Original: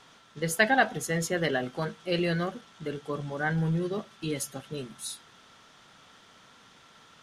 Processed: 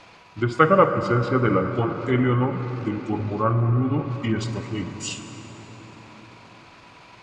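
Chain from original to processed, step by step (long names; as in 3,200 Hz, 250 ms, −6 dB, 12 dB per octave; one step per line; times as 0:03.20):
gain on a spectral selection 0:02.61–0:03.13, 490–2,300 Hz −7 dB
hum removal 186.1 Hz, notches 7
pitch shifter −5.5 semitones
treble cut that deepens with the level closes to 1,800 Hz, closed at −26 dBFS
convolution reverb RT60 5.2 s, pre-delay 38 ms, DRR 7.5 dB
level +7.5 dB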